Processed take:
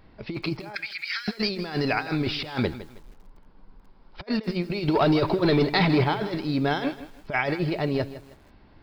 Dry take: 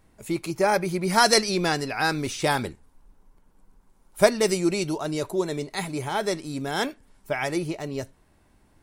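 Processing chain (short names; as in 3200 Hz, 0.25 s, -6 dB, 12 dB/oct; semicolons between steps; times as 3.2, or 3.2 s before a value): 0.75–1.28 steep high-pass 1500 Hz 48 dB/oct; negative-ratio compressor -29 dBFS, ratio -0.5; 4.88–6.04 sample leveller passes 2; downsampling 11025 Hz; lo-fi delay 0.159 s, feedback 35%, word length 8-bit, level -14 dB; gain +2.5 dB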